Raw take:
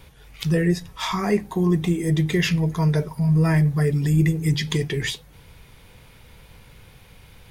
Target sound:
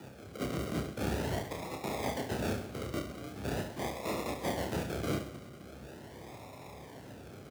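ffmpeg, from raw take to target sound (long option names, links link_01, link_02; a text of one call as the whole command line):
ffmpeg -i in.wav -filter_complex "[0:a]highpass=frequency=44:width=0.5412,highpass=frequency=44:width=1.3066,highshelf=frequency=2500:gain=9,afftfilt=real='re*lt(hypot(re,im),0.112)':imag='im*lt(hypot(re,im),0.112)':win_size=1024:overlap=0.75,flanger=delay=0.4:depth=3.3:regen=-11:speed=0.36:shape=triangular,acrossover=split=740[link_01][link_02];[link_01]acompressor=threshold=-59dB:ratio=6[link_03];[link_03][link_02]amix=inputs=2:normalize=0,acrusher=samples=41:mix=1:aa=0.000001:lfo=1:lforange=24.6:lforate=0.42,asoftclip=type=hard:threshold=-32.5dB,afreqshift=55,aecho=1:1:30|72|130.8|213.1|328.4:0.631|0.398|0.251|0.158|0.1,volume=2dB" out.wav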